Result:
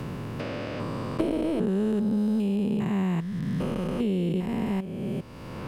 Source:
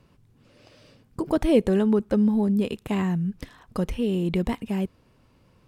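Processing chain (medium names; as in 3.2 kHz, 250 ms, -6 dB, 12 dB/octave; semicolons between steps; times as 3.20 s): spectrogram pixelated in time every 400 ms; three bands compressed up and down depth 100%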